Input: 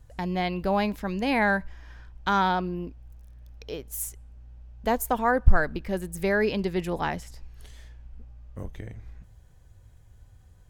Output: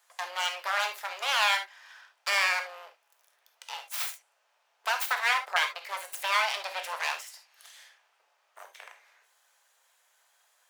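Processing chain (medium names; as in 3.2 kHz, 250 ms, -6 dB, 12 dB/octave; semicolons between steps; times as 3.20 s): full-wave rectifier; Bessel high-pass 1.1 kHz, order 8; gated-style reverb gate 90 ms flat, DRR 5.5 dB; trim +4.5 dB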